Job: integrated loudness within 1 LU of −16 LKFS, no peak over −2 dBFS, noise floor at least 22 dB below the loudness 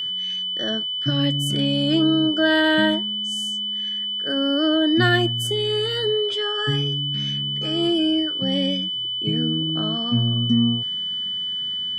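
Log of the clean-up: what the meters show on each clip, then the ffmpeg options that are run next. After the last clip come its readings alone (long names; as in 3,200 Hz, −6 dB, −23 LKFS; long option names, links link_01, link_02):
interfering tone 3,000 Hz; level of the tone −24 dBFS; integrated loudness −21.0 LKFS; sample peak −5.5 dBFS; target loudness −16.0 LKFS
→ -af "bandreject=frequency=3000:width=30"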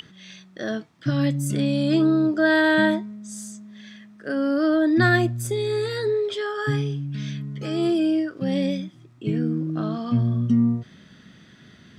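interfering tone none found; integrated loudness −23.0 LKFS; sample peak −6.5 dBFS; target loudness −16.0 LKFS
→ -af "volume=7dB,alimiter=limit=-2dB:level=0:latency=1"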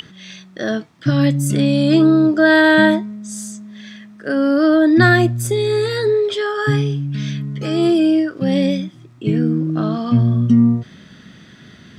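integrated loudness −16.0 LKFS; sample peak −2.0 dBFS; background noise floor −44 dBFS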